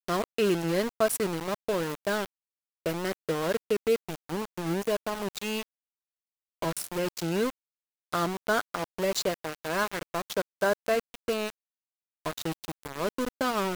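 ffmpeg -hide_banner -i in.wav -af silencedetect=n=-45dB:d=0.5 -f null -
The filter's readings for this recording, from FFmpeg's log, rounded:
silence_start: 2.26
silence_end: 2.86 | silence_duration: 0.60
silence_start: 5.63
silence_end: 6.62 | silence_duration: 0.99
silence_start: 7.50
silence_end: 8.12 | silence_duration: 0.62
silence_start: 11.50
silence_end: 12.25 | silence_duration: 0.75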